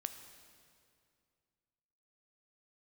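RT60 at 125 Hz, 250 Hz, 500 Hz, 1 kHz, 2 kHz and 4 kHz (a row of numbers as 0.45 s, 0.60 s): 2.8 s, 2.6 s, 2.4 s, 2.3 s, 2.1 s, 2.0 s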